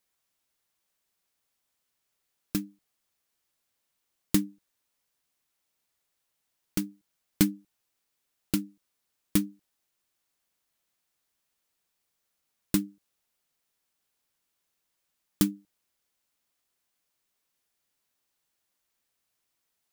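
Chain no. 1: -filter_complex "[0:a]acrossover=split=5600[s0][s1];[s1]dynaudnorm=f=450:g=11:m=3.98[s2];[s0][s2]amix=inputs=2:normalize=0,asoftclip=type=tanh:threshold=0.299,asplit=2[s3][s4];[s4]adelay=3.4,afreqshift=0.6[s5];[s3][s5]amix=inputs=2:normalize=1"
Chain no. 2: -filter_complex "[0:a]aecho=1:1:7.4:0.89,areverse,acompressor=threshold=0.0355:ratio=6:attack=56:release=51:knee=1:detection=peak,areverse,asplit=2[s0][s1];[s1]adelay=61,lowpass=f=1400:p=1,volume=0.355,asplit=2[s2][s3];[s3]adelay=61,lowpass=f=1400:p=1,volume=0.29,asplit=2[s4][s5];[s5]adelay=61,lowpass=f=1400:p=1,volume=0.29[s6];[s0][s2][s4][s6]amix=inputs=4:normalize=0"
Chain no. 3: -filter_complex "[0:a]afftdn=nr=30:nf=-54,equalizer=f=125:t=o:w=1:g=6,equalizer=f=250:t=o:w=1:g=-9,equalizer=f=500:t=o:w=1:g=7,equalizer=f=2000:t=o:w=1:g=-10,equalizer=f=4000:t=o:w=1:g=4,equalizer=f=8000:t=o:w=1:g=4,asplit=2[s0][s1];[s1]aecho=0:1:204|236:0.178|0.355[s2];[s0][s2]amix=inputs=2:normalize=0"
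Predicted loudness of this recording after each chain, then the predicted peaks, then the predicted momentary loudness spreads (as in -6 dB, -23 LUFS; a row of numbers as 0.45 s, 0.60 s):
-31.0 LUFS, -33.5 LUFS, -32.5 LUFS; -8.5 dBFS, -14.0 dBFS, -5.5 dBFS; 15 LU, 11 LU, 16 LU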